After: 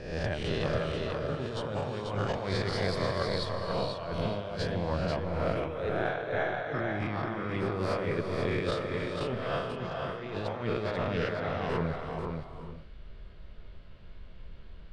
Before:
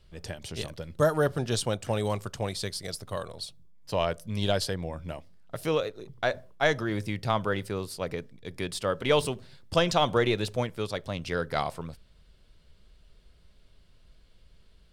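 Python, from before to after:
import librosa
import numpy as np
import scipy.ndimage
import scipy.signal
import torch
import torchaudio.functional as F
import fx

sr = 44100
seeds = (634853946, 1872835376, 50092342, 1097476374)

y = fx.spec_swells(x, sr, rise_s=0.83)
y = scipy.signal.sosfilt(scipy.signal.butter(2, 2400.0, 'lowpass', fs=sr, output='sos'), y)
y = fx.over_compress(y, sr, threshold_db=-35.0, ratio=-1.0)
y = y + 10.0 ** (-4.5 / 20.0) * np.pad(y, (int(489 * sr / 1000.0), 0))[:len(y)]
y = fx.rev_gated(y, sr, seeds[0], gate_ms=450, shape='rising', drr_db=7.5)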